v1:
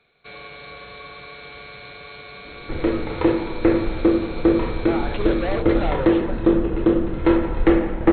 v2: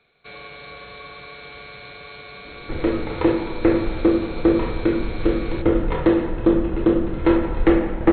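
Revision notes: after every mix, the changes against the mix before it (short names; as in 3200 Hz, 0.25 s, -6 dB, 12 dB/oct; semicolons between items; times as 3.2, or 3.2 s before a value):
speech: muted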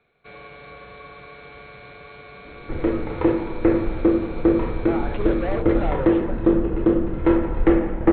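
speech: unmuted; master: add air absorption 380 m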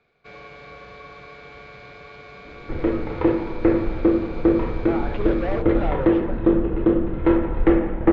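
master: remove brick-wall FIR low-pass 4300 Hz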